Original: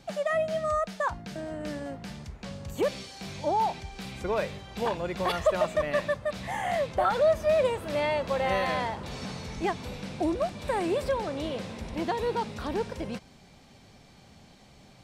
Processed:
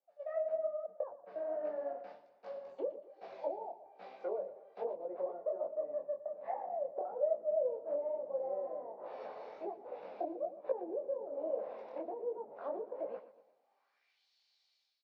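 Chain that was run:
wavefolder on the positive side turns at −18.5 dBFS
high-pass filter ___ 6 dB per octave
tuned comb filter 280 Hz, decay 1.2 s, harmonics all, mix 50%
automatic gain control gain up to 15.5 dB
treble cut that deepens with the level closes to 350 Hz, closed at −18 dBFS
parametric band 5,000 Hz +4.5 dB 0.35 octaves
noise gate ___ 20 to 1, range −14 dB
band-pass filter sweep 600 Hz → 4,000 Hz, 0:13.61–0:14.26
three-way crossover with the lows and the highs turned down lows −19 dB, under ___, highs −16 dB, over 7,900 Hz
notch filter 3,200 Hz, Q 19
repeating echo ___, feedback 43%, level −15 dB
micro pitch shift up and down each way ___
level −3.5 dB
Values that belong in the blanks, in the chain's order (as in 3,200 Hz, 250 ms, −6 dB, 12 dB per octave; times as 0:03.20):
190 Hz, −33 dBFS, 330 Hz, 118 ms, 42 cents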